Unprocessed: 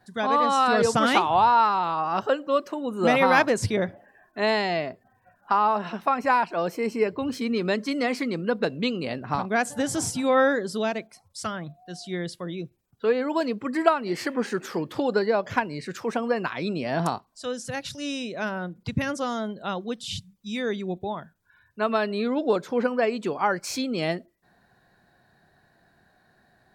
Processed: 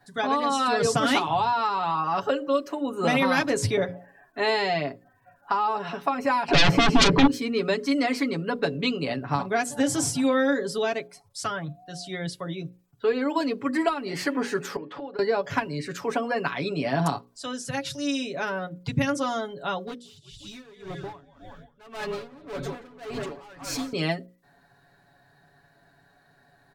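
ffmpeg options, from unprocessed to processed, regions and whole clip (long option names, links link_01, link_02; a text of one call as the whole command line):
ffmpeg -i in.wav -filter_complex "[0:a]asettb=1/sr,asplit=3[link_01][link_02][link_03];[link_01]atrim=end=6.484[link_04];[link_02]atrim=start=6.48:end=7.27,asetpts=PTS-STARTPTS,afade=type=in:duration=0.004:curve=qsin,afade=type=out:start_time=0.786:duration=0.004:curve=qsin,acrossover=split=2700[link_05][link_06];[link_06]acompressor=threshold=-58dB:ratio=4:attack=1:release=60[link_07];[link_05][link_07]amix=inputs=2:normalize=0,aemphasis=mode=reproduction:type=50fm,aeval=exprs='0.266*sin(PI/2*7.94*val(0)/0.266)':channel_layout=same[link_08];[link_03]atrim=start=7.266[link_09];[link_04][link_08]acrossfade=duration=0.004:curve1=hsin:curve2=qsin[link_10];[link_10][link_09]acrossfade=duration=0.004:curve1=qsin:curve2=hsin,asettb=1/sr,asplit=3[link_11][link_12][link_13];[link_11]atrim=end=14.764[link_14];[link_12]atrim=start=14.76:end=15.19,asetpts=PTS-STARTPTS,afade=type=in:duration=0.004:curve=qsin,afade=type=out:start_time=0.426:duration=0.004:curve=qsin,highpass=270,lowpass=2600,acompressor=threshold=-35dB:ratio=10:attack=3.2:release=140:knee=1:detection=peak[link_15];[link_13]atrim=start=15.186[link_16];[link_14][link_15]acrossfade=duration=0.004:curve1=hsin:curve2=qsin[link_17];[link_17][link_16]acrossfade=duration=0.004:curve1=qsin:curve2=hsin,asettb=1/sr,asplit=3[link_18][link_19][link_20];[link_18]atrim=end=19.864[link_21];[link_19]atrim=start=19.86:end=23.93,asetpts=PTS-STARTPTS,afade=type=in:duration=0.004:curve=qsin,afade=type=out:start_time=4.066:duration=0.004:curve=qsin,asplit=9[link_22][link_23][link_24][link_25][link_26][link_27][link_28][link_29][link_30];[link_23]adelay=179,afreqshift=-53,volume=-11dB[link_31];[link_24]adelay=358,afreqshift=-106,volume=-14.9dB[link_32];[link_25]adelay=537,afreqshift=-159,volume=-18.8dB[link_33];[link_26]adelay=716,afreqshift=-212,volume=-22.6dB[link_34];[link_27]adelay=895,afreqshift=-265,volume=-26.5dB[link_35];[link_28]adelay=1074,afreqshift=-318,volume=-30.4dB[link_36];[link_29]adelay=1253,afreqshift=-371,volume=-34.3dB[link_37];[link_30]adelay=1432,afreqshift=-424,volume=-38.1dB[link_38];[link_22][link_31][link_32][link_33][link_34][link_35][link_36][link_37][link_38]amix=inputs=9:normalize=0,atrim=end_sample=179487,volume=28dB,asoftclip=hard,volume=-28dB,aeval=exprs='val(0)*pow(10,-21*(0.5-0.5*cos(2*PI*1.8*n/s))/20)':channel_layout=same[link_39];[link_20]atrim=start=23.926[link_40];[link_21][link_39]acrossfade=duration=0.004:curve1=hsin:curve2=qsin[link_41];[link_41][link_40]acrossfade=duration=0.004:curve1=qsin:curve2=hsin,bandreject=frequency=60:width_type=h:width=6,bandreject=frequency=120:width_type=h:width=6,bandreject=frequency=180:width_type=h:width=6,bandreject=frequency=240:width_type=h:width=6,bandreject=frequency=300:width_type=h:width=6,bandreject=frequency=360:width_type=h:width=6,bandreject=frequency=420:width_type=h:width=6,bandreject=frequency=480:width_type=h:width=6,bandreject=frequency=540:width_type=h:width=6,aecho=1:1:7.1:0.75,acrossover=split=330|3000[link_42][link_43][link_44];[link_43]acompressor=threshold=-22dB:ratio=6[link_45];[link_42][link_45][link_44]amix=inputs=3:normalize=0" out.wav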